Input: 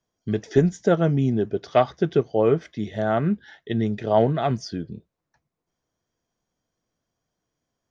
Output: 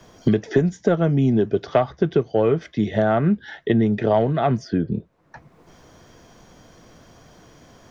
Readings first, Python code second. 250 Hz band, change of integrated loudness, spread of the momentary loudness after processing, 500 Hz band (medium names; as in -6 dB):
+4.0 dB, +2.0 dB, 5 LU, +1.5 dB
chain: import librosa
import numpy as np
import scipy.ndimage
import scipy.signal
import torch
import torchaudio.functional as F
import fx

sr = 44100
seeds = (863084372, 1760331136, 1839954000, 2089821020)

p1 = fx.lowpass(x, sr, hz=3900.0, slope=6)
p2 = 10.0 ** (-15.5 / 20.0) * np.tanh(p1 / 10.0 ** (-15.5 / 20.0))
p3 = p1 + (p2 * librosa.db_to_amplitude(-10.0))
y = fx.band_squash(p3, sr, depth_pct=100)